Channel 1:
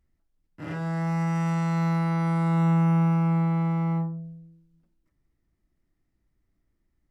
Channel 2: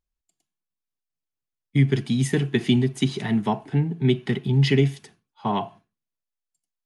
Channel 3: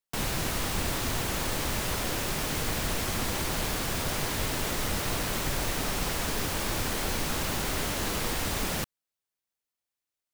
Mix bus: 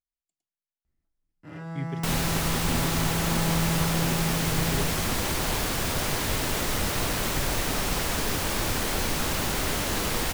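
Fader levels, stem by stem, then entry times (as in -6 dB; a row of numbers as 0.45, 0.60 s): -6.5, -16.0, +3.0 dB; 0.85, 0.00, 1.90 s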